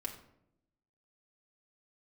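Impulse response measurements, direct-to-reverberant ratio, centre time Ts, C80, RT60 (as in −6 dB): −0.5 dB, 16 ms, 12.0 dB, 0.75 s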